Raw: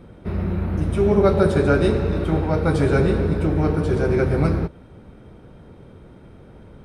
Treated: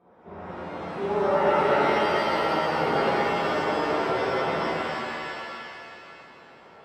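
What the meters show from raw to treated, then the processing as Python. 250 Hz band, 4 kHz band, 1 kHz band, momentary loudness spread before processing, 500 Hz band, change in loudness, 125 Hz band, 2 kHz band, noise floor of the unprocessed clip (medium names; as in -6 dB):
-10.5 dB, +5.5 dB, +6.0 dB, 8 LU, -4.5 dB, -5.0 dB, -18.5 dB, +2.5 dB, -46 dBFS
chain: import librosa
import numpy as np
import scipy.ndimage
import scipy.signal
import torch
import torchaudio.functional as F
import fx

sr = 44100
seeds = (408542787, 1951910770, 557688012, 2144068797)

y = fx.bandpass_q(x, sr, hz=830.0, q=1.9)
y = fx.rev_shimmer(y, sr, seeds[0], rt60_s=2.4, semitones=7, shimmer_db=-2, drr_db=-9.5)
y = F.gain(torch.from_numpy(y), -7.0).numpy()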